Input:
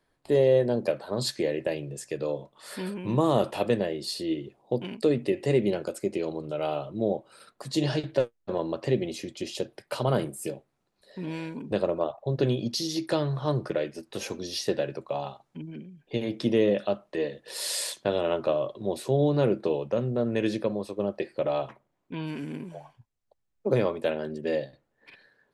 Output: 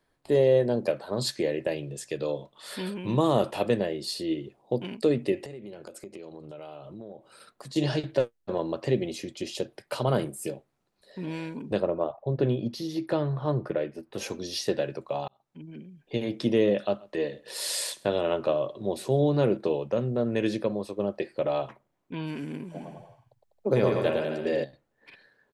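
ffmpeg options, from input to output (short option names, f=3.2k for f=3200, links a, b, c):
-filter_complex "[0:a]asettb=1/sr,asplit=3[a][b][c];[a]atrim=end=1.784[d];[b]atrim=start=1.78:end=3.28,asetpts=PTS-STARTPTS,afade=t=in:d=0.004:c=qsin,afade=t=out:st=1.496:d=0.004:c=qsin,equalizer=f=3.5k:t=o:w=0.63:g=6.5[e];[c]atrim=start=3.276[f];[d][e]acrossfade=d=0.004:c1=hsin:c2=qsin[g];[g][f]acrossfade=d=0.004:c1=qsin:c2=hsin,asettb=1/sr,asplit=3[h][i][j];[h]atrim=end=5.444[k];[i]atrim=start=5.44:end=7.76,asetpts=PTS-STARTPTS,afade=t=in:d=0.004:c=qsin,afade=t=out:st=2.316:d=0.004:c=qsin,acompressor=threshold=-39dB:ratio=6:attack=3.2:release=140:knee=1:detection=peak[l];[j]atrim=start=7.756[m];[k][l]acrossfade=d=0.004:c1=hsin:c2=qsin[n];[n][m]acrossfade=d=0.004:c1=qsin:c2=hsin,asettb=1/sr,asplit=3[o][p][q];[o]atrim=end=11.804[r];[p]atrim=start=11.8:end=14.18,asetpts=PTS-STARTPTS,afade=t=in:d=0.004:c=qsin,afade=t=out:st=2.376:d=0.004:c=qsin,equalizer=f=6.8k:w=0.56:g=-14[s];[q]atrim=start=14.176[t];[r][s]acrossfade=d=0.004:c1=hsin:c2=qsin[u];[u][t]acrossfade=d=0.004:c1=qsin:c2=hsin,asettb=1/sr,asplit=3[v][w][x];[v]atrim=end=16.804[y];[w]atrim=start=16.8:end=19.57,asetpts=PTS-STARTPTS,afade=t=in:d=0.004:c=qsin,afade=t=out:st=2.766:d=0.004:c=qsin,aecho=1:1:131:0.0631,atrim=end_sample=122157[z];[x]atrim=start=19.566[aa];[y][z]acrossfade=d=0.004:c1=hsin:c2=qsin[ab];[ab][aa]acrossfade=d=0.004:c1=qsin:c2=hsin,asplit=3[ac][ad][ae];[ac]afade=t=out:st=22.74:d=0.02[af];[ad]aecho=1:1:110|198|268.4|324.7|369.8:0.631|0.398|0.251|0.158|0.1,afade=t=in:st=22.74:d=0.02,afade=t=out:st=24.63:d=0.02[ag];[ae]afade=t=in:st=24.63:d=0.02[ah];[af][ag][ah]amix=inputs=3:normalize=0,asplit=2[ai][aj];[ai]atrim=end=15.28,asetpts=PTS-STARTPTS,afade=t=out:st=15.276:d=0.004:c=hsin[ak];[aj]atrim=start=15.28,asetpts=PTS-STARTPTS,afade=t=in:d=0.89:c=qsin[al];[ak][al]concat=n=2:v=0:a=1"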